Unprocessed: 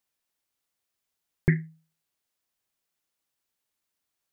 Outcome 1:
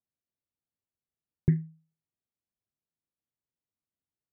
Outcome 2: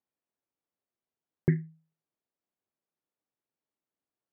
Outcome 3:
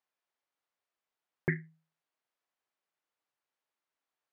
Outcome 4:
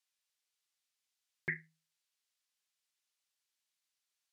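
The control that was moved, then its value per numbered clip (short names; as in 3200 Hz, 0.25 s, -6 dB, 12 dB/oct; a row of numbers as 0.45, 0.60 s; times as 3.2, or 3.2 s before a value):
band-pass, frequency: 110, 310, 910, 4400 Hz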